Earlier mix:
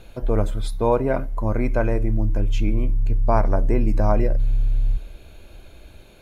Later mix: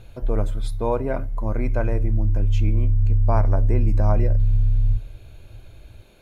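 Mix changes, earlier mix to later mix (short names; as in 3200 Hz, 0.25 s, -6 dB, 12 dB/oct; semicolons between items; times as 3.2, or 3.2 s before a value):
speech -4.0 dB; background: add bell 110 Hz +14.5 dB 0.43 oct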